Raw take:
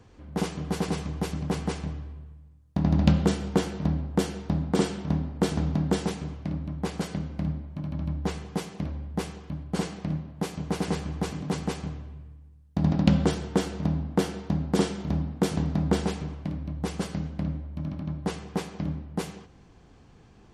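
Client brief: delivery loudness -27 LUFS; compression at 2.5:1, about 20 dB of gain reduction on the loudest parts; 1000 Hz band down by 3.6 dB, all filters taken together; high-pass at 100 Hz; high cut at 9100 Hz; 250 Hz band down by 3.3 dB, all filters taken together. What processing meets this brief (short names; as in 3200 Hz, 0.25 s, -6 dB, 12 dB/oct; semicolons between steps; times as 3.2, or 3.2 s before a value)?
HPF 100 Hz; LPF 9100 Hz; bell 250 Hz -4.5 dB; bell 1000 Hz -4.5 dB; compressor 2.5:1, threshold -50 dBFS; gain +21 dB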